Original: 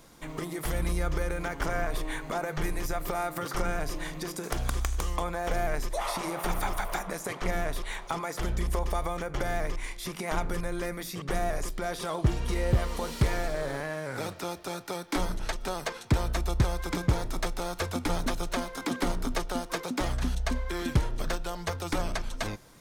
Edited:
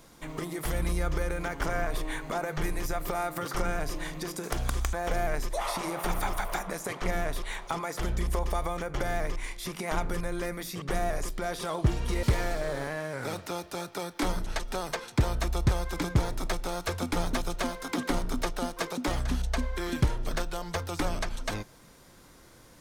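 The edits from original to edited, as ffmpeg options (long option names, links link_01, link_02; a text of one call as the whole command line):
ffmpeg -i in.wav -filter_complex "[0:a]asplit=3[link_01][link_02][link_03];[link_01]atrim=end=4.932[link_04];[link_02]atrim=start=5.328:end=12.632[link_05];[link_03]atrim=start=13.158[link_06];[link_04][link_05]acrossfade=duration=0.004:curve1=hsin:curve2=hsin[link_07];[link_07][link_06]acrossfade=duration=0.004:curve1=hsin:curve2=hsin" out.wav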